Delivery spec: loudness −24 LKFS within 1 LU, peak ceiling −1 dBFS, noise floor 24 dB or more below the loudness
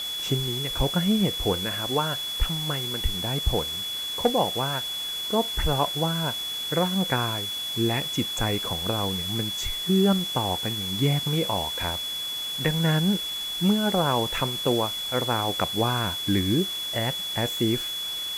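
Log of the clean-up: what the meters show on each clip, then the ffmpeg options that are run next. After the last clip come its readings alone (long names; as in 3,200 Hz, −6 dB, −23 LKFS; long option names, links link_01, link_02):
interfering tone 3,400 Hz; level of the tone −29 dBFS; background noise floor −32 dBFS; target noise floor −49 dBFS; integrated loudness −25.0 LKFS; sample peak −9.5 dBFS; target loudness −24.0 LKFS
→ -af "bandreject=frequency=3400:width=30"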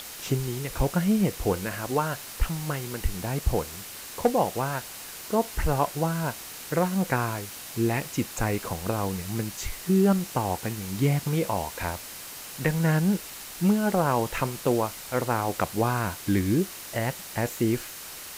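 interfering tone none found; background noise floor −41 dBFS; target noise floor −52 dBFS
→ -af "afftdn=noise_reduction=11:noise_floor=-41"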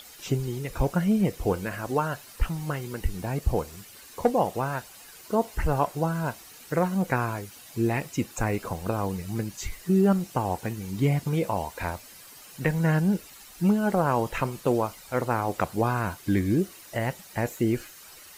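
background noise floor −48 dBFS; target noise floor −52 dBFS
→ -af "afftdn=noise_reduction=6:noise_floor=-48"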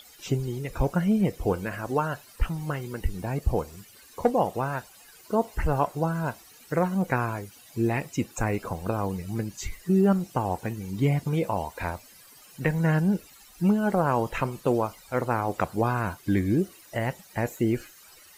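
background noise floor −52 dBFS; integrated loudness −27.5 LKFS; sample peak −10.0 dBFS; target loudness −24.0 LKFS
→ -af "volume=3.5dB"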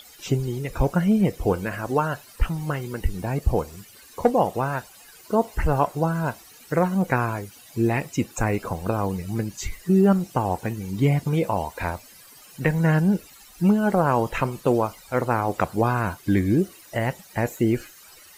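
integrated loudness −24.0 LKFS; sample peak −6.5 dBFS; background noise floor −49 dBFS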